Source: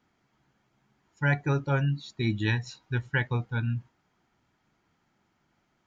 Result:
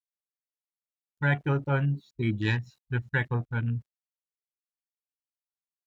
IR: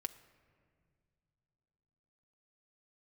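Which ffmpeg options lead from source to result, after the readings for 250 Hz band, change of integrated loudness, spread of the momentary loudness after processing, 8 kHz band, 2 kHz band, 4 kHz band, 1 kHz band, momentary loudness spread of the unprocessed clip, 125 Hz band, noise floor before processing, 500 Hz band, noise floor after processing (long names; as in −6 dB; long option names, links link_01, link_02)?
0.0 dB, 0.0 dB, 6 LU, can't be measured, 0.0 dB, −3.0 dB, 0.0 dB, 6 LU, 0.0 dB, −73 dBFS, 0.0 dB, below −85 dBFS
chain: -af "aeval=exprs='val(0)*gte(abs(val(0)),0.00237)':channel_layout=same,afwtdn=0.0112"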